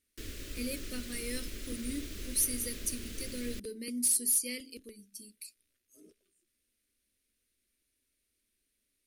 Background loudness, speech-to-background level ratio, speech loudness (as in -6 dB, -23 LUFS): -44.0 LUFS, 11.0 dB, -33.0 LUFS